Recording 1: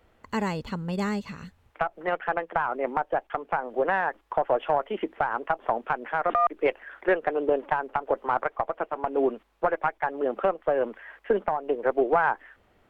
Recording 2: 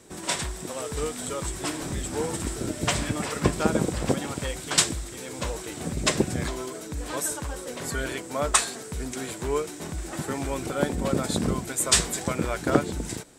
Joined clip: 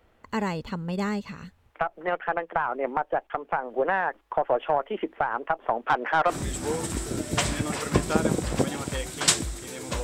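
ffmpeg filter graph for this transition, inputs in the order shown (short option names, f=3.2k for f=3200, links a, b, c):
-filter_complex "[0:a]asettb=1/sr,asplit=3[a][b][c];[a]atrim=end=5.874[d];[b]atrim=start=5.87:end=6.36,asetpts=PTS-STARTPTS,afade=t=in:d=0.004:c=qsin,afade=t=out:st=0.486:d=0.004:c=qsin,asplit=2[e][f];[f]highpass=f=720:p=1,volume=18dB,asoftclip=type=tanh:threshold=-10dB[g];[e][g]amix=inputs=2:normalize=0,lowpass=f=1.8k:p=1,volume=-6dB[h];[c]atrim=start=6.356[i];[d][h]acrossfade=d=0.004:c1=hsin:c2=qsin[j];[j][i]acrossfade=d=0.004:c1=qsin:c2=hsin,apad=whole_dur=10.03,atrim=end=10.03,atrim=end=6.36,asetpts=PTS-STARTPTS[k];[1:a]atrim=start=1.76:end=5.53,asetpts=PTS-STARTPTS[l];[k][l]acrossfade=d=0.1:c1=tri:c2=tri"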